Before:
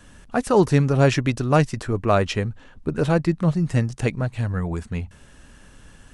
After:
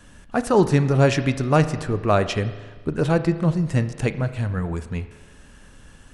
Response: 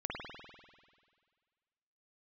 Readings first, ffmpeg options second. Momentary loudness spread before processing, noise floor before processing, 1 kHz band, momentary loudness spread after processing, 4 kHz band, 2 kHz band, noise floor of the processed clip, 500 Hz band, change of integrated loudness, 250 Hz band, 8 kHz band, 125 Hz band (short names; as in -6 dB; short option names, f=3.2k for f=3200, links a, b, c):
12 LU, -49 dBFS, 0.0 dB, 12 LU, 0.0 dB, 0.0 dB, -48 dBFS, +0.5 dB, 0.0 dB, 0.0 dB, 0.0 dB, 0.0 dB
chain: -filter_complex "[0:a]asplit=2[a][b];[1:a]atrim=start_sample=2205,asetrate=57330,aresample=44100[c];[b][c]afir=irnorm=-1:irlink=0,volume=-10dB[d];[a][d]amix=inputs=2:normalize=0,volume=-1.5dB"